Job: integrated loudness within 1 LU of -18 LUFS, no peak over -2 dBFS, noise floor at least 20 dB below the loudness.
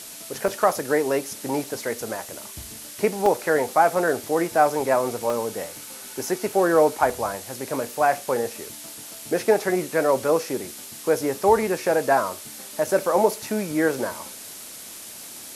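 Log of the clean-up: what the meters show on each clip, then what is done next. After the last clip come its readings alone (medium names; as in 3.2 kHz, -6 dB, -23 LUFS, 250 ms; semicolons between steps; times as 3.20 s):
dropouts 5; longest dropout 3.2 ms; noise floor -40 dBFS; noise floor target -43 dBFS; loudness -23.0 LUFS; peak level -5.5 dBFS; loudness target -18.0 LUFS
-> interpolate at 0.48/3.26/3.95/5.30/7.10 s, 3.2 ms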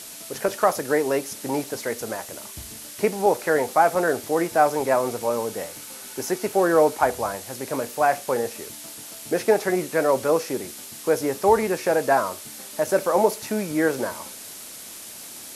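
dropouts 0; noise floor -40 dBFS; noise floor target -43 dBFS
-> noise reduction 6 dB, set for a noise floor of -40 dBFS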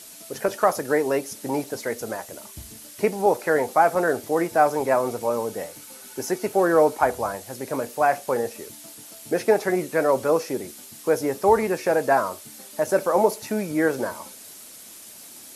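noise floor -44 dBFS; loudness -23.5 LUFS; peak level -6.0 dBFS; loudness target -18.0 LUFS
-> trim +5.5 dB; peak limiter -2 dBFS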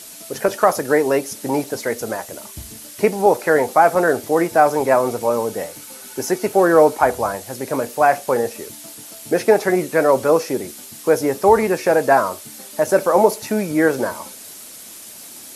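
loudness -18.0 LUFS; peak level -2.0 dBFS; noise floor -38 dBFS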